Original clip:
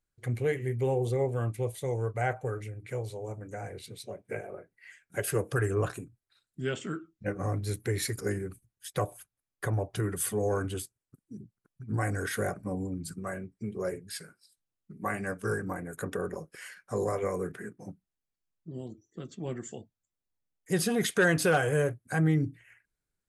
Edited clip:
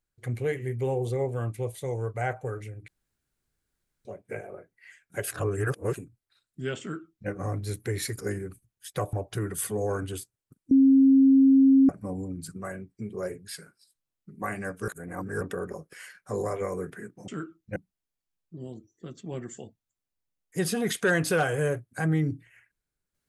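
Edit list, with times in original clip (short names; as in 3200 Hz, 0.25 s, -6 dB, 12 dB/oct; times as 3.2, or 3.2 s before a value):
2.88–4.05 room tone
5.31–5.95 reverse
6.81–7.29 copy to 17.9
9.13–9.75 cut
11.33–12.51 bleep 269 Hz -14 dBFS
15.5–16.03 reverse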